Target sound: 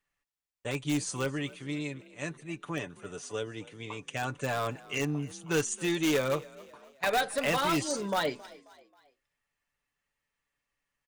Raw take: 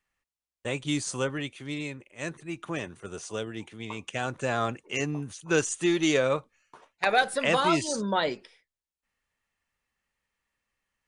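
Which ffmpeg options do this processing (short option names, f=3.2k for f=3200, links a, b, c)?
-filter_complex "[0:a]aecho=1:1:6.9:0.47,asplit=2[a][b];[b]aeval=exprs='(mod(7.5*val(0)+1,2)-1)/7.5':c=same,volume=-8.5dB[c];[a][c]amix=inputs=2:normalize=0,asplit=4[d][e][f][g];[e]adelay=268,afreqshift=41,volume=-21dB[h];[f]adelay=536,afreqshift=82,volume=-28.1dB[i];[g]adelay=804,afreqshift=123,volume=-35.3dB[j];[d][h][i][j]amix=inputs=4:normalize=0,volume=-6dB"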